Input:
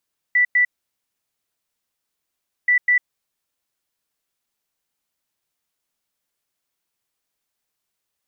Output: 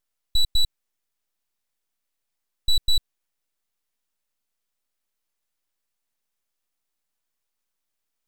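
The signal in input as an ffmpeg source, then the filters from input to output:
-f lavfi -i "aevalsrc='0.237*sin(2*PI*1970*t)*clip(min(mod(mod(t,2.33),0.2),0.1-mod(mod(t,2.33),0.2))/0.005,0,1)*lt(mod(t,2.33),0.4)':d=4.66:s=44100"
-af "aeval=exprs='abs(val(0))':c=same"

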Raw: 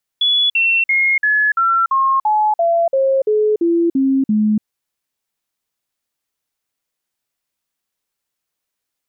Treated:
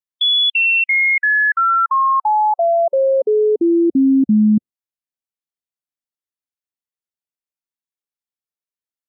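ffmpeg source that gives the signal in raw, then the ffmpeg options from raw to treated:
-f lavfi -i "aevalsrc='0.266*clip(min(mod(t,0.34),0.29-mod(t,0.34))/0.005,0,1)*sin(2*PI*3410*pow(2,-floor(t/0.34)/3)*mod(t,0.34))':d=4.42:s=44100"
-af "equalizer=f=230:w=1.5:g=3,afftdn=nr=18:nf=-32"

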